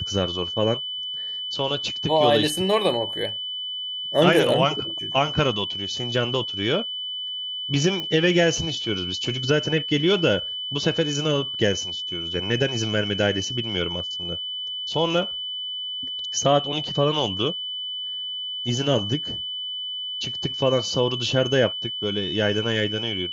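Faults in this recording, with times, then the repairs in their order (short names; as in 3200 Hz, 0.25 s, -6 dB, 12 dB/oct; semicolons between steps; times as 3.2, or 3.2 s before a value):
tone 3000 Hz -28 dBFS
8 pop -16 dBFS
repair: de-click; notch 3000 Hz, Q 30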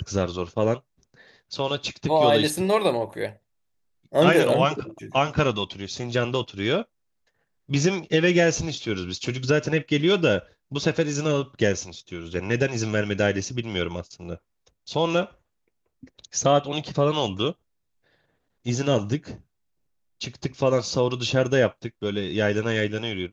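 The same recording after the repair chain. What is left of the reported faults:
none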